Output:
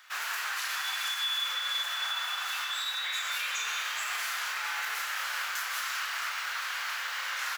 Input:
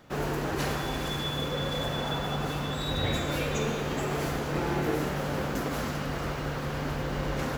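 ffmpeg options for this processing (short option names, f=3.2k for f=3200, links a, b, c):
-filter_complex "[0:a]highpass=f=1.3k:w=0.5412,highpass=f=1.3k:w=1.3066,alimiter=level_in=7dB:limit=-24dB:level=0:latency=1,volume=-7dB,asplit=2[a][b];[b]adelay=32,volume=-6dB[c];[a][c]amix=inputs=2:normalize=0,volume=6.5dB"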